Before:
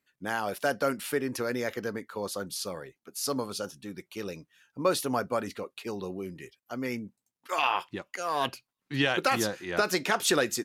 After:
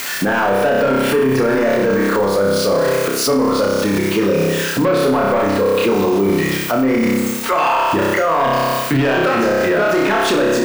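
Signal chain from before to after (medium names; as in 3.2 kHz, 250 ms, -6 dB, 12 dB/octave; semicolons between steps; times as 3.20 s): zero-crossing glitches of -31 dBFS; low-pass 1.8 kHz 6 dB/octave; waveshaping leveller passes 3; bass shelf 65 Hz -6.5 dB; band-stop 780 Hz, Q 12; flutter echo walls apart 5.2 m, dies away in 0.84 s; de-esser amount 95%; bass shelf 440 Hz -7.5 dB; loudness maximiser +32.5 dB; trim -7.5 dB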